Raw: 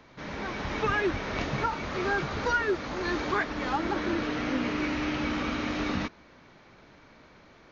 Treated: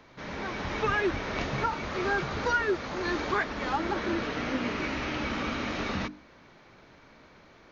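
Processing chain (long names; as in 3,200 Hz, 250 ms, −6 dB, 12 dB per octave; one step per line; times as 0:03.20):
mains-hum notches 50/100/150/200/250/300 Hz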